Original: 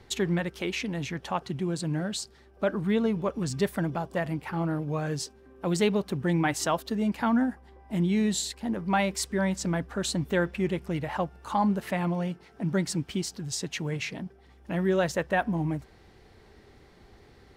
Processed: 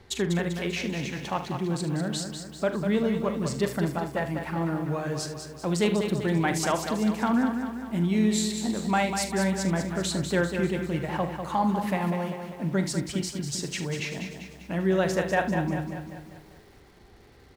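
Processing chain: early reflections 42 ms -11.5 dB, 75 ms -13.5 dB; bit-crushed delay 196 ms, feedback 55%, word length 9-bit, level -7 dB

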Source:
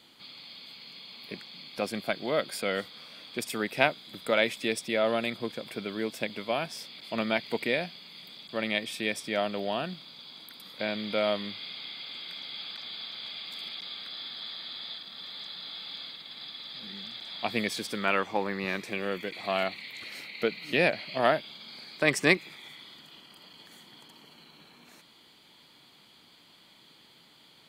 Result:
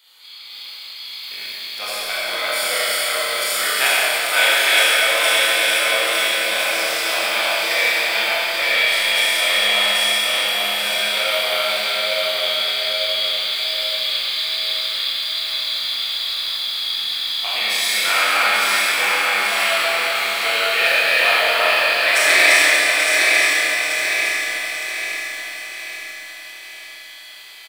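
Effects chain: backward echo that repeats 456 ms, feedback 64%, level -0.5 dB; high-pass 1.1 kHz 12 dB/octave; treble shelf 10 kHz +12 dB; in parallel at -10.5 dB: bit crusher 6-bit; on the sum: doubling 24 ms -5 dB; on a send: feedback delay 835 ms, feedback 44%, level -7 dB; on the sum: Schroeder reverb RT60 3.2 s, combs from 30 ms, DRR -8.5 dB

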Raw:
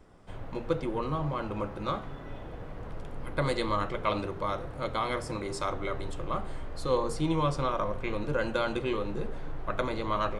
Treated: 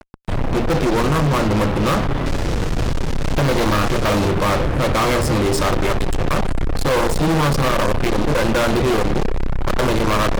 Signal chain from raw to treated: 2.26–4.28 s: one-bit delta coder 32 kbps, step -38.5 dBFS; bass shelf 450 Hz +7.5 dB; fuzz box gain 38 dB, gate -42 dBFS; trim -1.5 dB

